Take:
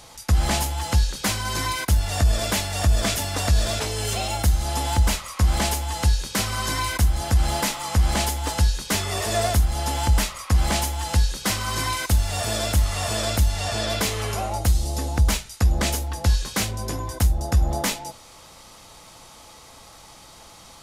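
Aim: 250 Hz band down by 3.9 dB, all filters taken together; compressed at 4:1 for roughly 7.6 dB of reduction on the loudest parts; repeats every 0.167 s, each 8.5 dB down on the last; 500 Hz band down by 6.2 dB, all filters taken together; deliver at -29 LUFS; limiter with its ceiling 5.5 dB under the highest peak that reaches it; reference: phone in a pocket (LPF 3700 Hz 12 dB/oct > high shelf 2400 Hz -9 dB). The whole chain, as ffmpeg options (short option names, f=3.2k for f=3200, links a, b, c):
-af "equalizer=f=250:t=o:g=-3.5,equalizer=f=500:t=o:g=-7.5,acompressor=threshold=-23dB:ratio=4,alimiter=limit=-19dB:level=0:latency=1,lowpass=3.7k,highshelf=f=2.4k:g=-9,aecho=1:1:167|334|501|668:0.376|0.143|0.0543|0.0206,volume=2dB"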